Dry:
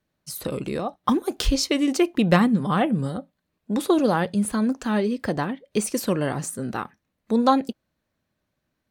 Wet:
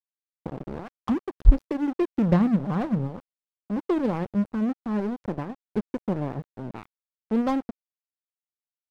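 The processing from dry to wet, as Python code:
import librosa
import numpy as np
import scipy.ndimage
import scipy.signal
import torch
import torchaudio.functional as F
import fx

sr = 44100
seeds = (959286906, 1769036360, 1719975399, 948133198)

y = scipy.signal.medfilt(x, 15)
y = fx.tilt_eq(y, sr, slope=-4.0)
y = np.sign(y) * np.maximum(np.abs(y) - 10.0 ** (-22.5 / 20.0), 0.0)
y = y * librosa.db_to_amplitude(-8.5)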